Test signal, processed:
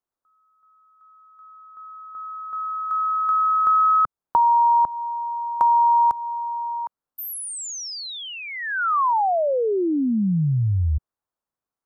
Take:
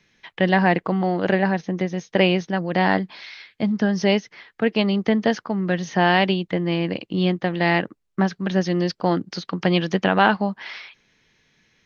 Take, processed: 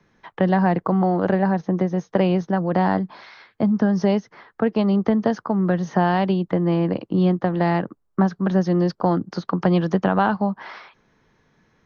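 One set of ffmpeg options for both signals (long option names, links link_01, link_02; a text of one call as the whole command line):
ffmpeg -i in.wav -filter_complex "[0:a]acrossover=split=170|3000[link_01][link_02][link_03];[link_02]acompressor=threshold=-26dB:ratio=2.5[link_04];[link_01][link_04][link_03]amix=inputs=3:normalize=0,highshelf=frequency=1700:width_type=q:width=1.5:gain=-11.5,volume=5dB" out.wav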